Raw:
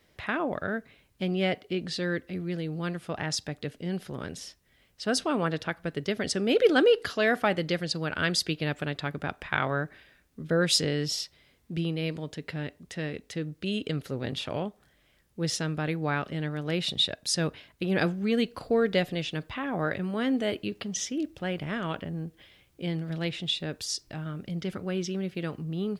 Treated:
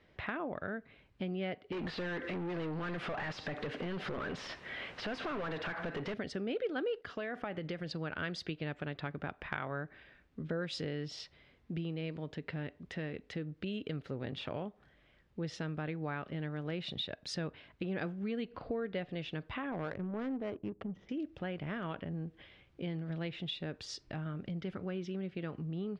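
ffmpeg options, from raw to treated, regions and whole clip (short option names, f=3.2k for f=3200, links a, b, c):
-filter_complex "[0:a]asettb=1/sr,asplit=3[a][b][c];[a]atrim=end=1.724[d];[b]atrim=start=1.72:end=6.14,asetpts=PTS-STARTPTS,afade=t=in:d=0.004:c=qsin,afade=t=out:st=4.416:d=0.004:c=qsin,acompressor=threshold=-42dB:ratio=3:attack=3.2:release=140:knee=1:detection=peak,asplit=2[e][f];[f]highpass=f=720:p=1,volume=35dB,asoftclip=type=tanh:threshold=-24.5dB[g];[e][g]amix=inputs=2:normalize=0,lowpass=f=2.9k:p=1,volume=-6dB[h];[c]atrim=start=6.136[i];[d][h]acrossfade=d=0.004:c1=hsin:c2=qsin[j];[j][i]acrossfade=d=0.004:c1=qsin:c2=hsin,asettb=1/sr,asplit=3[k][l][m];[k]atrim=end=7.014[n];[l]atrim=start=7.01:end=7.89,asetpts=PTS-STARTPTS,afade=t=in:d=0.004:c=qsin,afade=t=out:st=0.876:d=0.004:c=qsin,agate=range=-33dB:threshold=-43dB:ratio=3:release=100:detection=peak,equalizer=f=4.2k:t=o:w=0.22:g=-6,acompressor=threshold=-28dB:ratio=4:attack=3.2:release=140:knee=1:detection=peak[o];[m]atrim=start=7.886[p];[n][o]acrossfade=d=0.004:c1=hsin:c2=qsin[q];[q][p]acrossfade=d=0.004:c1=qsin:c2=hsin,asettb=1/sr,asplit=3[r][s][t];[r]atrim=end=18.454[u];[s]atrim=start=18.45:end=19.09,asetpts=PTS-STARTPTS,afade=t=in:d=0.004:c=qsin,afade=t=out:st=0.636:d=0.004:c=qsin,lowpass=4.2k,acompressor=mode=upward:threshold=-37dB:ratio=2.5:attack=3.2:release=140:knee=2.83:detection=peak[v];[t]atrim=start=19.086[w];[u][v]acrossfade=d=0.004:c1=hsin:c2=qsin[x];[x][w]acrossfade=d=0.004:c1=qsin:c2=hsin,asettb=1/sr,asplit=3[y][z][aa];[y]atrim=end=19.724[ab];[z]atrim=start=19.72:end=21.09,asetpts=PTS-STARTPTS,afade=t=in:d=0.004:c=qsin,afade=t=out:st=1.366:d=0.004:c=qsin,adynamicsmooth=sensitivity=2:basefreq=520,aeval=exprs='clip(val(0),-1,0.0668)':c=same[ac];[aa]atrim=start=21.086[ad];[ab][ac]acrossfade=d=0.004:c1=hsin:c2=qsin[ae];[ae][ad]acrossfade=d=0.004:c1=qsin:c2=hsin,lowpass=2.9k,acompressor=threshold=-38dB:ratio=3"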